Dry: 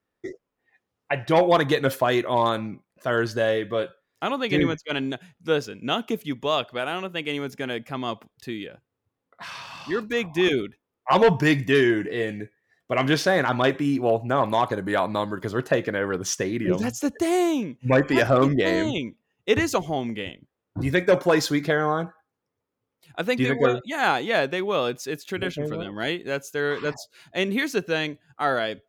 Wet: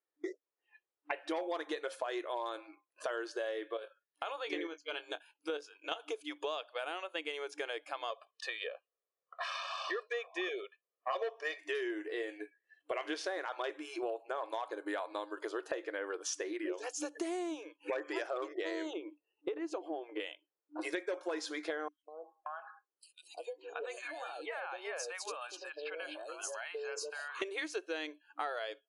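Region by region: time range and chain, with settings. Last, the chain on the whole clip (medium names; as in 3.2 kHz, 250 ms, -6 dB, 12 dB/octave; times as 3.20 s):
3.77–6.00 s: level held to a coarse grid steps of 11 dB + doubling 21 ms -13 dB
8.10–11.59 s: distance through air 73 m + comb 1.7 ms, depth 95%
18.93–20.20 s: tilt EQ -4.5 dB/octave + compression 5:1, threshold -21 dBFS
21.88–27.42 s: band-stop 3.4 kHz, Q 5.9 + compression 12:1, threshold -35 dBFS + three bands offset in time highs, lows, mids 200/580 ms, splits 670/3500 Hz
whole clip: spectral noise reduction 18 dB; FFT band-pass 300–11000 Hz; compression 6:1, threshold -41 dBFS; trim +4 dB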